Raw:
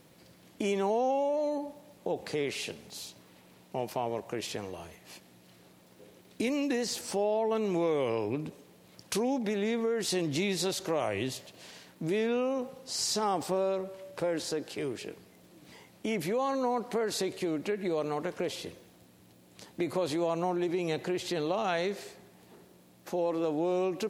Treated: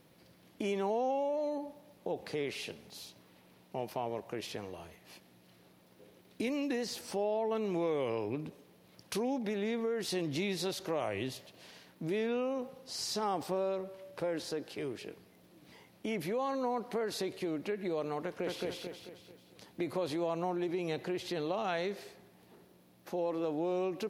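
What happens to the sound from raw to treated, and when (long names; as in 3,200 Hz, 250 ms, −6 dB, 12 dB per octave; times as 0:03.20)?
0:18.24–0:18.65: delay throw 220 ms, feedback 45%, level −1 dB
whole clip: parametric band 7,500 Hz −7 dB 0.55 octaves; level −4 dB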